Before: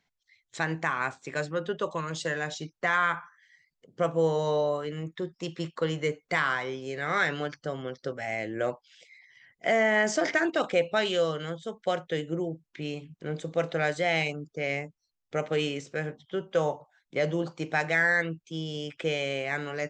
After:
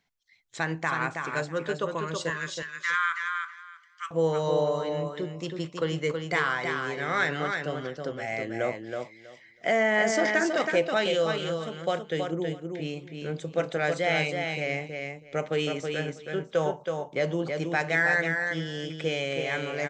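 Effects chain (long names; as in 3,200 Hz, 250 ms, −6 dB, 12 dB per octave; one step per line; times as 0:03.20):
0:02.30–0:04.11: Butterworth high-pass 1,100 Hz 72 dB per octave
repeating echo 323 ms, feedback 17%, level −5 dB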